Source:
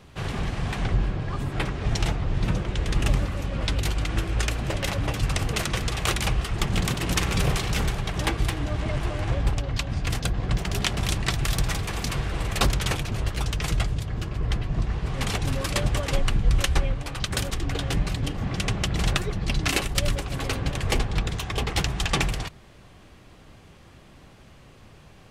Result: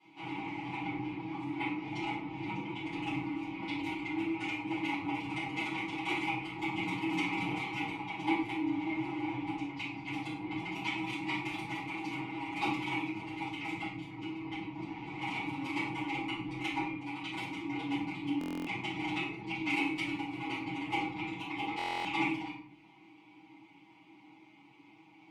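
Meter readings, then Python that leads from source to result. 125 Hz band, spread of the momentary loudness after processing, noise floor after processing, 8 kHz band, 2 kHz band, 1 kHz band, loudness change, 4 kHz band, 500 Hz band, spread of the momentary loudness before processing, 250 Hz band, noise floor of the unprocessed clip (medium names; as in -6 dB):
-20.0 dB, 6 LU, -59 dBFS, -24.5 dB, -5.0 dB, -3.5 dB, -9.0 dB, -12.5 dB, -11.5 dB, 5 LU, -2.5 dB, -50 dBFS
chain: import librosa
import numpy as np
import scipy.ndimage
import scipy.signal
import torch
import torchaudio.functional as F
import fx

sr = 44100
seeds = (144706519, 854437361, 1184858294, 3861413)

y = fx.dereverb_blind(x, sr, rt60_s=0.51)
y = scipy.signal.sosfilt(scipy.signal.butter(2, 91.0, 'highpass', fs=sr, output='sos'), y)
y = fx.dynamic_eq(y, sr, hz=5300.0, q=0.81, threshold_db=-46.0, ratio=4.0, max_db=-6)
y = fx.vowel_filter(y, sr, vowel='u')
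y = fx.tilt_shelf(y, sr, db=-6.0, hz=680.0)
y = y + 0.85 * np.pad(y, (int(6.2 * sr / 1000.0), 0))[:len(y)]
y = fx.room_shoebox(y, sr, seeds[0], volume_m3=110.0, walls='mixed', distance_m=4.0)
y = fx.buffer_glitch(y, sr, at_s=(18.39, 21.77), block=1024, repeats=11)
y = F.gain(torch.from_numpy(y), -8.5).numpy()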